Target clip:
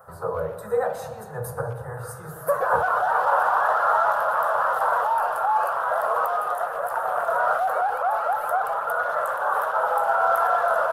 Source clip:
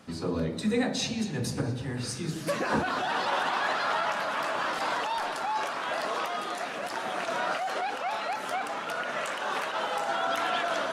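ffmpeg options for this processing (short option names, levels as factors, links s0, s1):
-filter_complex "[0:a]firequalizer=gain_entry='entry(130,0);entry(260,-28);entry(480,8);entry(1400,10);entry(2300,-21);entry(5600,-18);entry(12000,13)':delay=0.05:min_phase=1,asplit=2[s0][s1];[s1]adelay=120,highpass=300,lowpass=3400,asoftclip=type=hard:threshold=0.0473,volume=0.178[s2];[s0][s2]amix=inputs=2:normalize=0"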